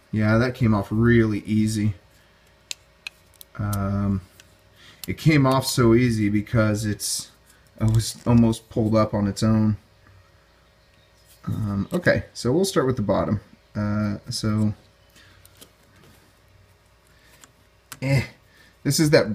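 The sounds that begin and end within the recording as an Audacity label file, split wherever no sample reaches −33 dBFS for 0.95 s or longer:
11.440000	15.630000	sound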